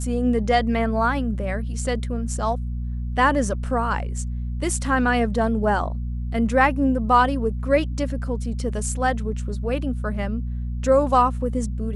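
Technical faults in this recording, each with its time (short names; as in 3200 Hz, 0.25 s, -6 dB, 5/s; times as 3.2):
hum 60 Hz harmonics 4 -27 dBFS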